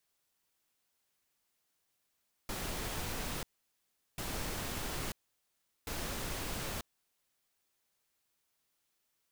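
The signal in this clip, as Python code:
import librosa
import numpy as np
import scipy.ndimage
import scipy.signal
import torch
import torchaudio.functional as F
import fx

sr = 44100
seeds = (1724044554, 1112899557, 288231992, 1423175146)

y = fx.noise_burst(sr, seeds[0], colour='pink', on_s=0.94, off_s=0.75, bursts=3, level_db=-38.5)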